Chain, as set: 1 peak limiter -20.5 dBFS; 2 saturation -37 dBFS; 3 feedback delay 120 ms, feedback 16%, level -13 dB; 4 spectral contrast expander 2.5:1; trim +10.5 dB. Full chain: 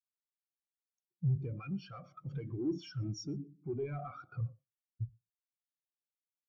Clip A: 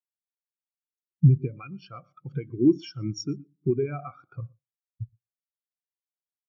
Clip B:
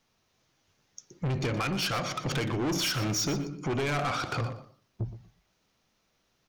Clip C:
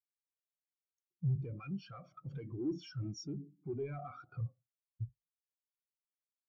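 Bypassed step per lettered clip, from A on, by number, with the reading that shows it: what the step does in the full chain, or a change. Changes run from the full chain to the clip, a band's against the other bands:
2, distortion -5 dB; 4, 2 kHz band +13.5 dB; 3, loudness change -2.0 LU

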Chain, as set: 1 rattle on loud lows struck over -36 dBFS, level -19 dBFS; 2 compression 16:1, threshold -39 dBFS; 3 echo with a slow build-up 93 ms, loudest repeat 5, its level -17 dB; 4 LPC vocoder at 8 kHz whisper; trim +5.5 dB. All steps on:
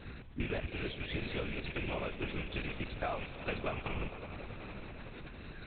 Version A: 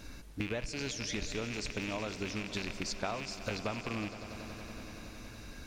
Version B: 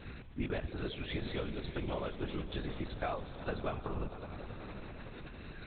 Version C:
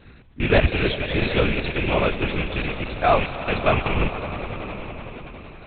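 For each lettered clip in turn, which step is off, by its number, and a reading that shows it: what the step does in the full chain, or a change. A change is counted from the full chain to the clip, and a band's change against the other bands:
4, 4 kHz band +4.5 dB; 1, 2 kHz band -5.0 dB; 2, mean gain reduction 11.5 dB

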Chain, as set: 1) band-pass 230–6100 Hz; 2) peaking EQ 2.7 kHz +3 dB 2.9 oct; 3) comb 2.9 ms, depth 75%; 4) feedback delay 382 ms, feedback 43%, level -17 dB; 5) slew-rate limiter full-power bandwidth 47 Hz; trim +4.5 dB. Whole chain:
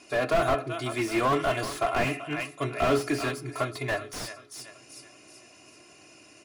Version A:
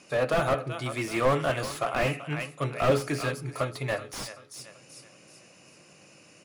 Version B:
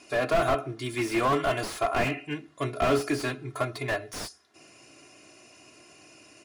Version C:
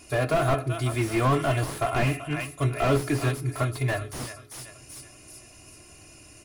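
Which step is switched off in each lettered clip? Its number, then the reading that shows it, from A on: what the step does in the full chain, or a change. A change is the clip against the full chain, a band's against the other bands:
3, 125 Hz band +4.5 dB; 4, momentary loudness spread change -8 LU; 1, 125 Hz band +10.5 dB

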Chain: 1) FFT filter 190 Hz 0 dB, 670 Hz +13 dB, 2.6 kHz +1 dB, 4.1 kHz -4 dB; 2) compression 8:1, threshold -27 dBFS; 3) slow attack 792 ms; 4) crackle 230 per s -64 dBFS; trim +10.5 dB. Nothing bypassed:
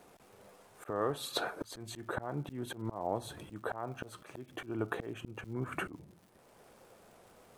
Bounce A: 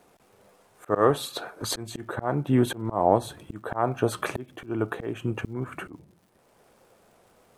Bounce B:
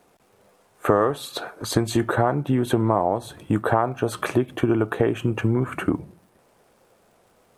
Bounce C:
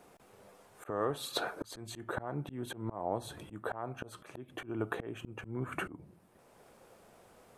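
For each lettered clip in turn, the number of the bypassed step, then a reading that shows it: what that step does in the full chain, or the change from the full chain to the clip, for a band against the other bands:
2, mean gain reduction 7.0 dB; 3, crest factor change -2.5 dB; 4, momentary loudness spread change -6 LU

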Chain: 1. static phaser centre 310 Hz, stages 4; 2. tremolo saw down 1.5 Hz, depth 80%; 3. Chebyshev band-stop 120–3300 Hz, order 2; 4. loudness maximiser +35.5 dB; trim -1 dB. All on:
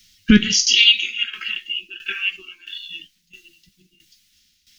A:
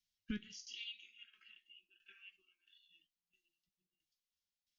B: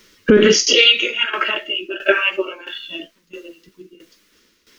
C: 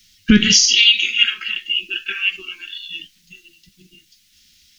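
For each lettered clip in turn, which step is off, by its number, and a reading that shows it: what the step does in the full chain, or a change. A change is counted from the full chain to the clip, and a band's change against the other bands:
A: 4, crest factor change +6.0 dB; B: 3, 500 Hz band +17.5 dB; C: 2, crest factor change -2.5 dB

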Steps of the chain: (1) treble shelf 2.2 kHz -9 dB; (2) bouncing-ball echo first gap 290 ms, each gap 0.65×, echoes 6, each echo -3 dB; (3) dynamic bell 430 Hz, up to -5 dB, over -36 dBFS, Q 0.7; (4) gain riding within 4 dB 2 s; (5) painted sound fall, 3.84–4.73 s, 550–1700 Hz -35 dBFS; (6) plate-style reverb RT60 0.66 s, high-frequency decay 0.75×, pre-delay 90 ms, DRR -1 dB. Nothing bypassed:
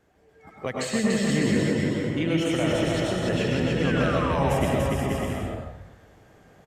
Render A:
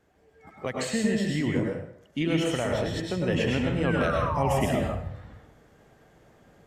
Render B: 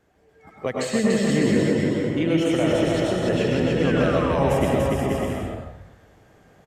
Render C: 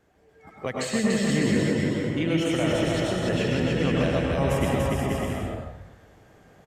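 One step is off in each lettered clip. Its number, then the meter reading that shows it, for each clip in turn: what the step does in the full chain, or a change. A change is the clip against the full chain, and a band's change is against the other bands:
2, momentary loudness spread change +2 LU; 3, loudness change +3.0 LU; 5, 1 kHz band -2.5 dB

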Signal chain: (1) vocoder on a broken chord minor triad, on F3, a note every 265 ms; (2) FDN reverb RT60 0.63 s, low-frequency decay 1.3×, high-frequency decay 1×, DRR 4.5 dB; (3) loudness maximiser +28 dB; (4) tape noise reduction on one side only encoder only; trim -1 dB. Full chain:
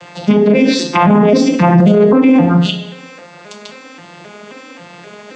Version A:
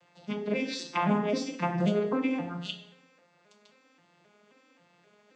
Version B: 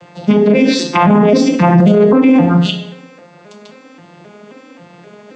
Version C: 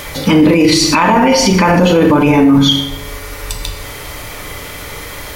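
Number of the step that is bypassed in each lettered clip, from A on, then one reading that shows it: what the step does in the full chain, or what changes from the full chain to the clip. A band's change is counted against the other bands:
3, crest factor change +6.5 dB; 4, momentary loudness spread change -1 LU; 1, 4 kHz band +8.5 dB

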